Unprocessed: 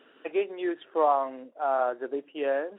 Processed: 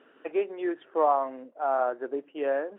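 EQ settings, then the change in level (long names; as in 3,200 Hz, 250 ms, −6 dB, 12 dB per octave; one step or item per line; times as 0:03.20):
low-pass filter 2,300 Hz 12 dB per octave
0.0 dB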